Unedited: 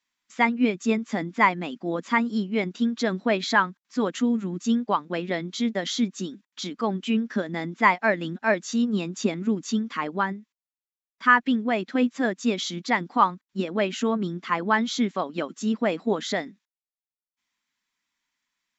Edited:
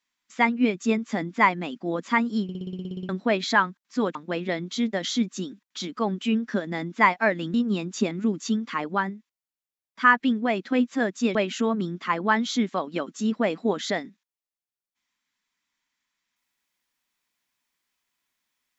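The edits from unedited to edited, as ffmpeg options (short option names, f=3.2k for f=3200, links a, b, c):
-filter_complex "[0:a]asplit=15[a][b][c][d][e][f][g][h][i][j][k][l][m][n][o];[a]atrim=end=2.492[p];[b]atrim=start=2.428:end=2.492[q];[c]atrim=start=2.428:end=2.492[r];[d]atrim=start=2.428:end=2.492[s];[e]atrim=start=2.428:end=2.492[t];[f]atrim=start=2.428:end=2.492[u];[g]atrim=start=2.428:end=2.492[v];[h]atrim=start=2.428:end=2.492[w];[i]atrim=start=2.428:end=2.492[x];[j]atrim=start=2.428:end=2.492[y];[k]atrim=start=2.428:end=2.492[z];[l]atrim=start=3.088:end=4.152[aa];[m]atrim=start=4.968:end=8.362[ab];[n]atrim=start=8.768:end=12.582[ac];[o]atrim=start=13.768[ad];[p][q]acrossfade=d=0.004:c1=hsin:c2=hsin[ae];[ae][r]acrossfade=d=0.004:c1=hsin:c2=hsin[af];[af][s]acrossfade=d=0.004:c1=hsin:c2=hsin[ag];[ag][t]acrossfade=d=0.004:c1=hsin:c2=hsin[ah];[ah][u]acrossfade=d=0.004:c1=hsin:c2=hsin[ai];[ai][v]acrossfade=d=0.004:c1=hsin:c2=hsin[aj];[aj][w]acrossfade=d=0.004:c1=hsin:c2=hsin[ak];[ak][x]acrossfade=d=0.004:c1=hsin:c2=hsin[al];[al][y]acrossfade=d=0.004:c1=hsin:c2=hsin[am];[am][z]acrossfade=d=0.004:c1=hsin:c2=hsin[an];[an][aa]acrossfade=d=0.004:c1=hsin:c2=hsin[ao];[ao][ab]acrossfade=d=0.004:c1=hsin:c2=hsin[ap];[ap][ac]acrossfade=d=0.004:c1=hsin:c2=hsin[aq];[aq][ad]acrossfade=d=0.004:c1=hsin:c2=hsin"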